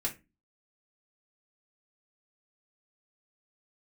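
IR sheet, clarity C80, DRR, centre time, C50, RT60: 22.0 dB, −2.5 dB, 12 ms, 14.0 dB, 0.25 s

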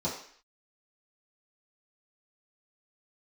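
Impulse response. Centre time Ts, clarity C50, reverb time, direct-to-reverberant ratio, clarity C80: 33 ms, 5.5 dB, 0.55 s, −9.0 dB, 9.0 dB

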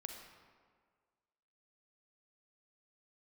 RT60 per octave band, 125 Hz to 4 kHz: 1.7, 1.7, 1.8, 1.7, 1.5, 1.0 seconds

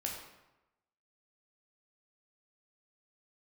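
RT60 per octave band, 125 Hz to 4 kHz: 1.0, 0.95, 0.95, 1.0, 0.85, 0.70 seconds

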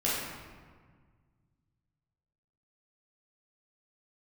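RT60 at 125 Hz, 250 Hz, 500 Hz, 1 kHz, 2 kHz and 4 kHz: 3.0, 2.2, 1.7, 1.6, 1.4, 1.0 seconds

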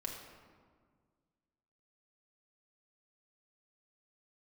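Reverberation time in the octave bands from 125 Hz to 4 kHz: 2.3, 2.2, 1.8, 1.7, 1.3, 0.95 seconds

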